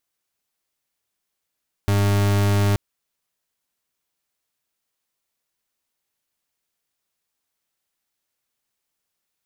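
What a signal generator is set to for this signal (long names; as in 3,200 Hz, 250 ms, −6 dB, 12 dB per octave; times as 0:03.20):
pulse wave 101 Hz, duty 40% −18 dBFS 0.88 s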